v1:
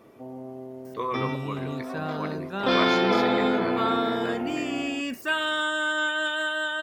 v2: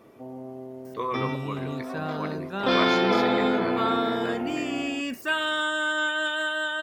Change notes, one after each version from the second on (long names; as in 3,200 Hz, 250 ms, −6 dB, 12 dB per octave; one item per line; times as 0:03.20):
nothing changed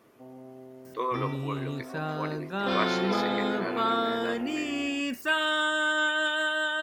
speech: add linear-phase brick-wall high-pass 230 Hz
first sound −7.5 dB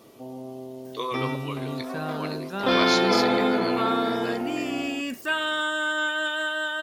speech: add high shelf with overshoot 2,500 Hz +11 dB, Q 1.5
first sound +8.5 dB